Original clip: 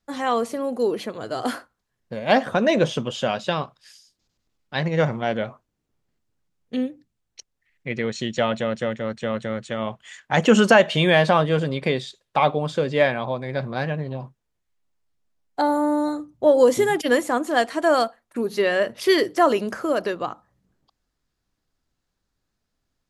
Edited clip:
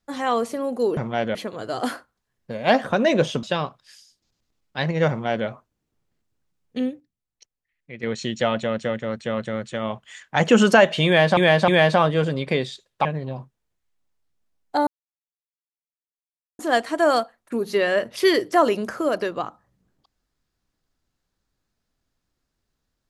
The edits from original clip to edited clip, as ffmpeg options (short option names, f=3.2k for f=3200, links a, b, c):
-filter_complex "[0:a]asplit=11[a][b][c][d][e][f][g][h][i][j][k];[a]atrim=end=0.972[l];[b]atrim=start=5.058:end=5.442[m];[c]atrim=start=0.968:end=3.052[n];[d]atrim=start=3.398:end=6.97,asetpts=PTS-STARTPTS,afade=t=out:st=3.402:d=0.17:c=log:silence=0.316228[o];[e]atrim=start=6.97:end=8,asetpts=PTS-STARTPTS,volume=-10dB[p];[f]atrim=start=8:end=11.342,asetpts=PTS-STARTPTS,afade=t=in:d=0.17:c=log:silence=0.316228[q];[g]atrim=start=11.028:end=11.342[r];[h]atrim=start=11.028:end=12.402[s];[i]atrim=start=13.888:end=15.71,asetpts=PTS-STARTPTS,afade=t=out:st=1.818:d=0.004:c=hsin[t];[j]atrim=start=15.71:end=17.43,asetpts=PTS-STARTPTS,volume=0[u];[k]atrim=start=17.43,asetpts=PTS-STARTPTS,afade=t=in:d=0.004:c=hsin[v];[l][m]acrossfade=d=0.004:c1=hsin:c2=hsin[w];[w][n]acrossfade=d=0.004:c1=hsin:c2=hsin[x];[o][p][q]concat=n=3:v=0:a=1[y];[x][y]acrossfade=d=0.004:c1=hsin:c2=hsin[z];[z][r]acrossfade=d=0.004:c1=hsin:c2=hsin[aa];[aa][s]acrossfade=d=0.004:c1=hsin:c2=hsin[ab];[t][u][v]concat=n=3:v=0:a=1[ac];[ab][ac]acrossfade=d=0.004:c1=hsin:c2=hsin"